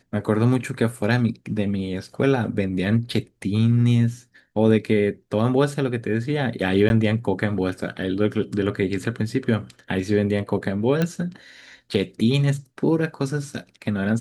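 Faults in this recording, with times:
0:06.89–0:06.90: drop-out 11 ms
0:11.02: click −10 dBFS

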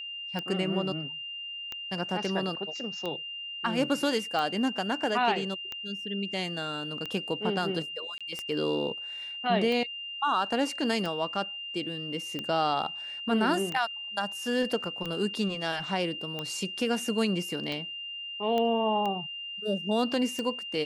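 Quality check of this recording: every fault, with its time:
scratch tick 45 rpm −20 dBFS
whistle 2,800 Hz −36 dBFS
0:08.18–0:08.21: drop-out 26 ms
0:18.58: click −18 dBFS

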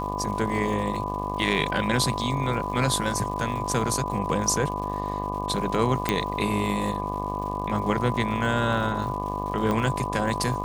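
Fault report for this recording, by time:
mains buzz 50 Hz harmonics 24 −32 dBFS
surface crackle 240 per second −36 dBFS
whistle 1,000 Hz −31 dBFS
0:06.09: click −9 dBFS
0:09.71: click −14 dBFS

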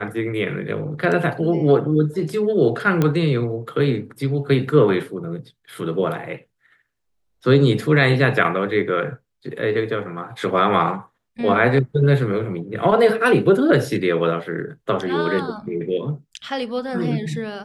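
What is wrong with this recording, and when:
0:03.02: click −7 dBFS

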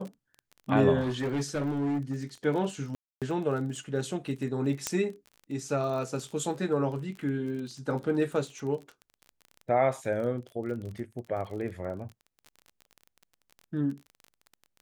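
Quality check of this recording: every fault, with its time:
surface crackle 29 per second −37 dBFS
0:01.00–0:02.24: clipping −26 dBFS
0:02.95–0:03.22: drop-out 267 ms
0:04.87: click −13 dBFS

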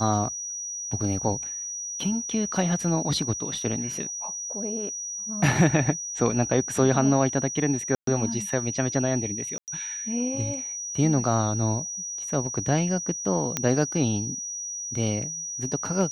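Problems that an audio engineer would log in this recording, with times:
whistle 5,800 Hz −31 dBFS
0:07.95–0:08.07: drop-out 123 ms
0:09.58–0:09.68: drop-out 98 ms
0:13.57: click −8 dBFS

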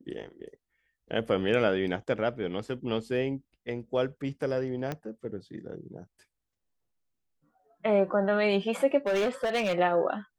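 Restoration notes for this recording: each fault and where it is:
0:04.92: click −19 dBFS
0:09.07–0:09.75: clipping −23.5 dBFS

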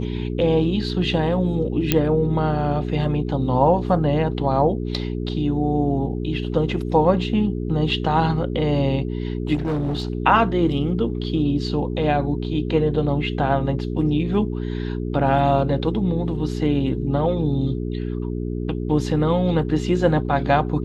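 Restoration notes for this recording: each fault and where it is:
mains hum 60 Hz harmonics 7 −26 dBFS
0:01.92: click −2 dBFS
0:09.54–0:10.10: clipping −19.5 dBFS

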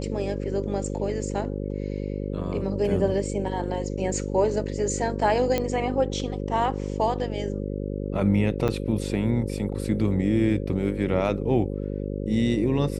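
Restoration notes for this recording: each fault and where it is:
mains buzz 50 Hz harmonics 11 −30 dBFS
0:05.58: click −11 dBFS
0:08.68–0:08.69: drop-out 5.4 ms

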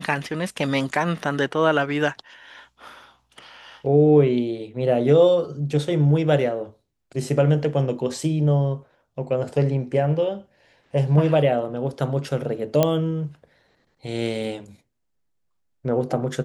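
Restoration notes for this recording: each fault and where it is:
0:12.83: click −5 dBFS

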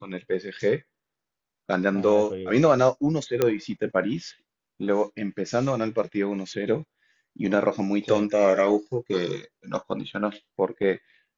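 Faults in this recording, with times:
0:03.42: click −8 dBFS

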